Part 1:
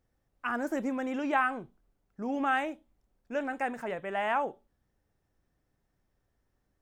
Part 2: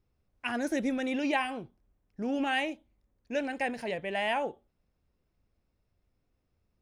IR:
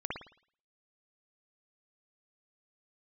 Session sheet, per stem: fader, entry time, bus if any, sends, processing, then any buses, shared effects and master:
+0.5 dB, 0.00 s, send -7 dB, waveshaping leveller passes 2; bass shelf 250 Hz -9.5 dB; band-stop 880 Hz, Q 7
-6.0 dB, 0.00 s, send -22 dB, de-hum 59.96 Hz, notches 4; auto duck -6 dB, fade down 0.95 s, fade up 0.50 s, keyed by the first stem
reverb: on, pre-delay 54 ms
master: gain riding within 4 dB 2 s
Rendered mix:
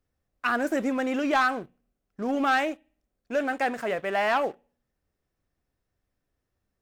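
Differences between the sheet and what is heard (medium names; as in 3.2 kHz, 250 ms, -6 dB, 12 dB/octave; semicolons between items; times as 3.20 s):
stem 1: send off; master: missing gain riding within 4 dB 2 s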